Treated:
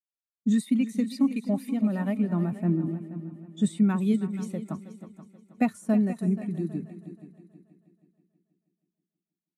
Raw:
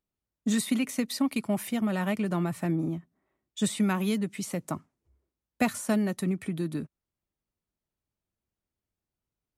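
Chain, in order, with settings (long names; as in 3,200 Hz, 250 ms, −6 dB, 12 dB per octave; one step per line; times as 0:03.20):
echo machine with several playback heads 160 ms, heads second and third, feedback 53%, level −10.5 dB
every bin expanded away from the loudest bin 1.5 to 1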